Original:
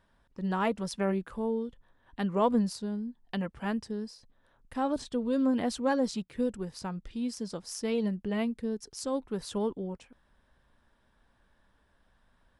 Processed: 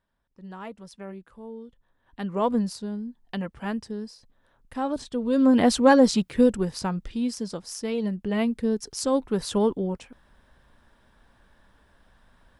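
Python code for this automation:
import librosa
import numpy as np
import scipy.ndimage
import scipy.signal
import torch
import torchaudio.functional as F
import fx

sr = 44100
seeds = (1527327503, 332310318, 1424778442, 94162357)

y = fx.gain(x, sr, db=fx.line((1.4, -10.0), (2.47, 2.0), (5.13, 2.0), (5.65, 11.5), (6.46, 11.5), (7.94, 1.5), (8.69, 8.5)))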